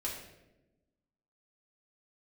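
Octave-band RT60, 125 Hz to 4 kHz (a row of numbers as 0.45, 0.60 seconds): 1.4, 1.5, 1.2, 0.80, 0.80, 0.65 seconds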